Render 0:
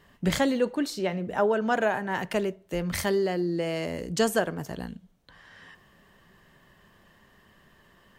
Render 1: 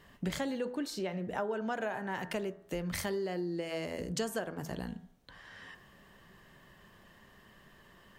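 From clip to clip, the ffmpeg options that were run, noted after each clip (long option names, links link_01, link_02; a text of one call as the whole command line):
ffmpeg -i in.wav -af "bandreject=frequency=82.58:width_type=h:width=4,bandreject=frequency=165.16:width_type=h:width=4,bandreject=frequency=247.74:width_type=h:width=4,bandreject=frequency=330.32:width_type=h:width=4,bandreject=frequency=412.9:width_type=h:width=4,bandreject=frequency=495.48:width_type=h:width=4,bandreject=frequency=578.06:width_type=h:width=4,bandreject=frequency=660.64:width_type=h:width=4,bandreject=frequency=743.22:width_type=h:width=4,bandreject=frequency=825.8:width_type=h:width=4,bandreject=frequency=908.38:width_type=h:width=4,bandreject=frequency=990.96:width_type=h:width=4,bandreject=frequency=1073.54:width_type=h:width=4,bandreject=frequency=1156.12:width_type=h:width=4,bandreject=frequency=1238.7:width_type=h:width=4,bandreject=frequency=1321.28:width_type=h:width=4,bandreject=frequency=1403.86:width_type=h:width=4,bandreject=frequency=1486.44:width_type=h:width=4,bandreject=frequency=1569.02:width_type=h:width=4,bandreject=frequency=1651.6:width_type=h:width=4,bandreject=frequency=1734.18:width_type=h:width=4,bandreject=frequency=1816.76:width_type=h:width=4,bandreject=frequency=1899.34:width_type=h:width=4,acompressor=threshold=-35dB:ratio=3" out.wav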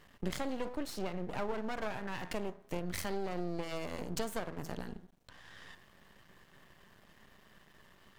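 ffmpeg -i in.wav -af "aeval=exprs='max(val(0),0)':channel_layout=same,volume=1.5dB" out.wav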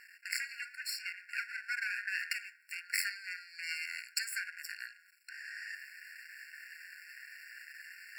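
ffmpeg -i in.wav -af "areverse,acompressor=mode=upward:threshold=-45dB:ratio=2.5,areverse,afftfilt=real='re*eq(mod(floor(b*sr/1024/1400),2),1)':imag='im*eq(mod(floor(b*sr/1024/1400),2),1)':win_size=1024:overlap=0.75,volume=10.5dB" out.wav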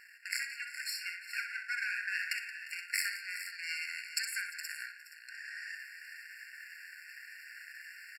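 ffmpeg -i in.wav -af "aecho=1:1:64|174|351|416|473:0.398|0.158|0.106|0.237|0.211,aresample=32000,aresample=44100" out.wav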